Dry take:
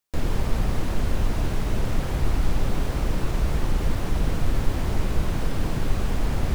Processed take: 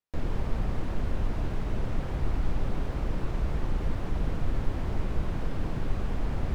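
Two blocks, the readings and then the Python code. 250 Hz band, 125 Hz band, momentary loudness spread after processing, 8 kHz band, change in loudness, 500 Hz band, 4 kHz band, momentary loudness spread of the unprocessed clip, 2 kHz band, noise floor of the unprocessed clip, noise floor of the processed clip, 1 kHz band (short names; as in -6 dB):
-5.5 dB, -5.5 dB, 2 LU, -15.5 dB, -5.5 dB, -5.5 dB, -11.0 dB, 2 LU, -7.5 dB, -28 dBFS, -34 dBFS, -6.0 dB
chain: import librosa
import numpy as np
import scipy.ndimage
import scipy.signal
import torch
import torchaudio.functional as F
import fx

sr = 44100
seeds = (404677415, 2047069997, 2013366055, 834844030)

y = fx.lowpass(x, sr, hz=2300.0, slope=6)
y = F.gain(torch.from_numpy(y), -5.5).numpy()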